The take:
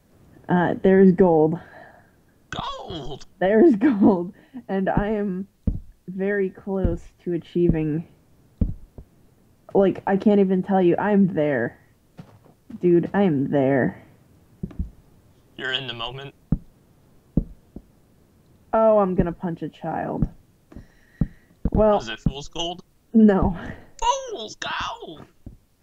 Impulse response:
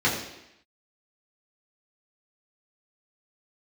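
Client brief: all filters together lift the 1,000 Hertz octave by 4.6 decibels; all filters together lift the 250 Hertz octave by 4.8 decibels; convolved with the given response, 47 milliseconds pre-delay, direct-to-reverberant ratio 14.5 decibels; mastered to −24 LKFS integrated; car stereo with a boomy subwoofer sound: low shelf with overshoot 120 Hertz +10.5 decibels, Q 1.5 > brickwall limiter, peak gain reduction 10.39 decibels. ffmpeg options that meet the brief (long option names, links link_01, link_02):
-filter_complex "[0:a]equalizer=frequency=250:width_type=o:gain=9,equalizer=frequency=1000:width_type=o:gain=5.5,asplit=2[link_01][link_02];[1:a]atrim=start_sample=2205,adelay=47[link_03];[link_02][link_03]afir=irnorm=-1:irlink=0,volume=-29.5dB[link_04];[link_01][link_04]amix=inputs=2:normalize=0,lowshelf=frequency=120:width_type=q:width=1.5:gain=10.5,volume=-2.5dB,alimiter=limit=-12dB:level=0:latency=1"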